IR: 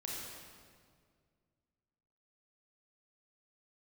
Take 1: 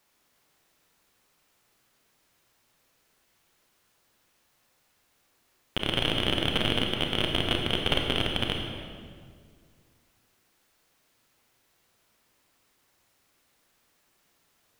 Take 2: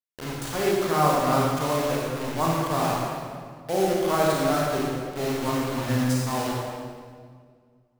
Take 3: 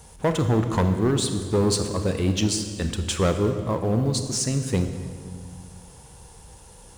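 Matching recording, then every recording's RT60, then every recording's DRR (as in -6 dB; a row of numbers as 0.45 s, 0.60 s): 2; 2.0 s, 2.0 s, 2.0 s; 1.5 dB, -4.0 dB, 7.0 dB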